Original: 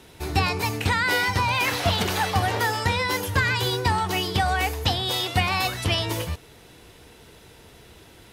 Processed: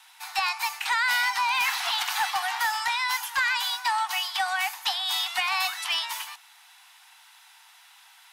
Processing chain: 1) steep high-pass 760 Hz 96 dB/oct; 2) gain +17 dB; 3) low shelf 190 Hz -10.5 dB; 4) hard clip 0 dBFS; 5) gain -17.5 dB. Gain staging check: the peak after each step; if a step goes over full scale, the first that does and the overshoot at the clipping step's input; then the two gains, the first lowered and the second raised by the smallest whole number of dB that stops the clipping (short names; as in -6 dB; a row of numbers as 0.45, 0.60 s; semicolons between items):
-11.0, +6.0, +6.0, 0.0, -17.5 dBFS; step 2, 6.0 dB; step 2 +11 dB, step 5 -11.5 dB